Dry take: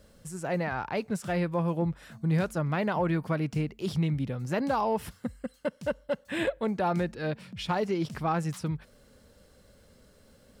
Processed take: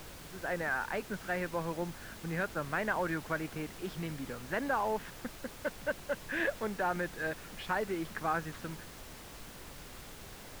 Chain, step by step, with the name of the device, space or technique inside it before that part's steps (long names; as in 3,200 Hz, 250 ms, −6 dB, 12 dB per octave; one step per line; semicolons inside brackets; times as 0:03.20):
horn gramophone (band-pass filter 240–3,200 Hz; parametric band 1,600 Hz +10.5 dB 0.55 octaves; tape wow and flutter; pink noise bed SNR 11 dB)
level −5.5 dB